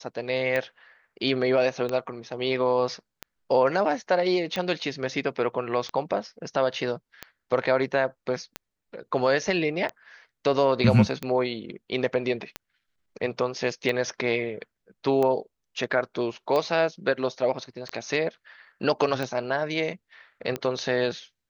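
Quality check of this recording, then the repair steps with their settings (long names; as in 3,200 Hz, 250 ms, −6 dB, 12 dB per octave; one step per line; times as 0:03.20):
scratch tick 45 rpm −15 dBFS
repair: click removal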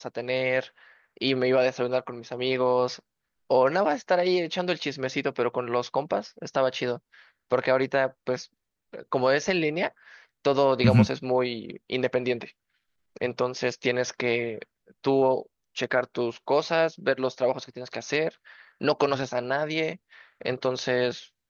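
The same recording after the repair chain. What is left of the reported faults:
none of them is left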